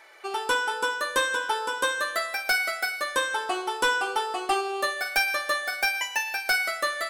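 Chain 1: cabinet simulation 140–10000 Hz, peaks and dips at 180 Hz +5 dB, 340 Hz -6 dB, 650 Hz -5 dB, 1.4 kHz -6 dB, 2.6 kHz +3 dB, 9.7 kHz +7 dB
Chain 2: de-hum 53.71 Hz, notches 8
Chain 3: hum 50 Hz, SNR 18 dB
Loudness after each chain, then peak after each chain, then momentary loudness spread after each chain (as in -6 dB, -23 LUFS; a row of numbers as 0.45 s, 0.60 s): -27.0 LUFS, -26.0 LUFS, -26.0 LUFS; -12.0 dBFS, -15.5 dBFS, -16.0 dBFS; 5 LU, 4 LU, 4 LU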